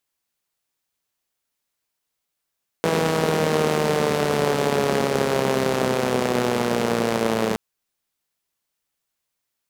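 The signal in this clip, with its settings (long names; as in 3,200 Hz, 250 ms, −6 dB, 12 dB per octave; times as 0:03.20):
pulse-train model of a four-cylinder engine, changing speed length 4.72 s, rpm 4,900, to 3,300, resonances 220/420 Hz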